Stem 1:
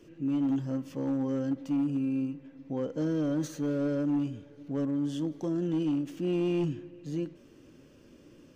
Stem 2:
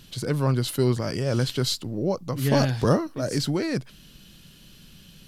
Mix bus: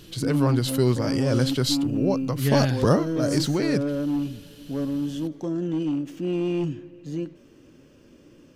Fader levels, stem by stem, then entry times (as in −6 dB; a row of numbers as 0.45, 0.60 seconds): +3.0, +1.0 decibels; 0.00, 0.00 seconds